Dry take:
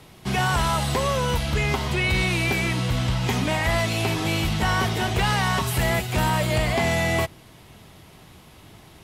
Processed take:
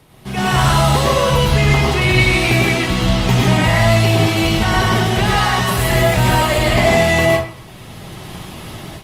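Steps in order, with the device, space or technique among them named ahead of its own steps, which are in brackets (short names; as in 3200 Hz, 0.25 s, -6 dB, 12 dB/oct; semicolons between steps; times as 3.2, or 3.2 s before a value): speakerphone in a meeting room (reverb RT60 0.55 s, pre-delay 97 ms, DRR -3 dB; AGC gain up to 13 dB; gain -1 dB; Opus 32 kbps 48000 Hz)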